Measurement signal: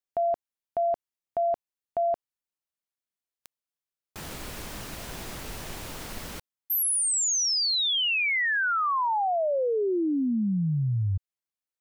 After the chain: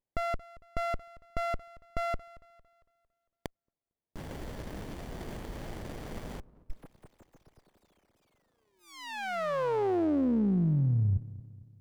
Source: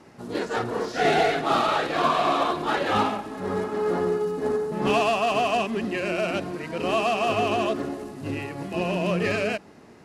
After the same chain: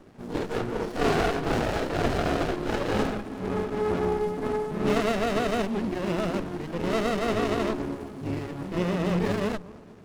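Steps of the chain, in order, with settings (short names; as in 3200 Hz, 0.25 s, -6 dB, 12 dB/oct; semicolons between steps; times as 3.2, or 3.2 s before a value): analogue delay 0.226 s, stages 1024, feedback 48%, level -18 dB; running maximum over 33 samples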